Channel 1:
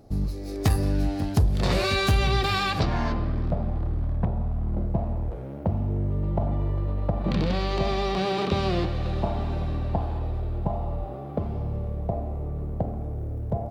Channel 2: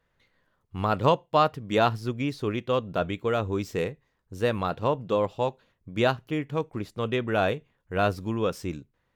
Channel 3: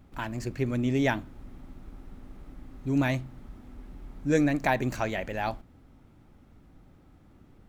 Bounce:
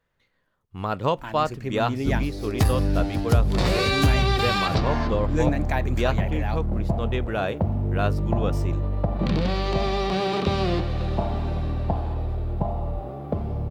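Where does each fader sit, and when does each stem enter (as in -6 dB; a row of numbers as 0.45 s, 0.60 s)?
+1.5 dB, -2.0 dB, -2.0 dB; 1.95 s, 0.00 s, 1.05 s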